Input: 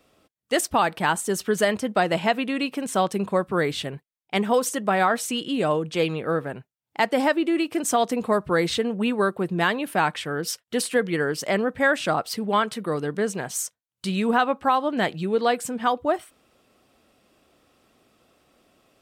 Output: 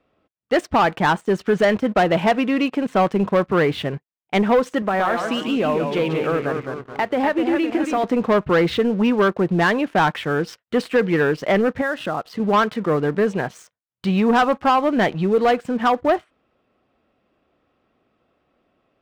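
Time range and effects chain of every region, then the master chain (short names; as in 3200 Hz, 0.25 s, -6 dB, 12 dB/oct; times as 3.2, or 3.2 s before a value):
4.82–8.04 low shelf 130 Hz -9 dB + compressor 3:1, threshold -24 dBFS + echoes that change speed 0.115 s, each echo -1 st, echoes 3, each echo -6 dB
11.81–12.4 compressor 3:1, threshold -30 dBFS + Butterworth band-stop 2300 Hz, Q 6.8
whole clip: LPF 2400 Hz 12 dB/oct; sample leveller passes 2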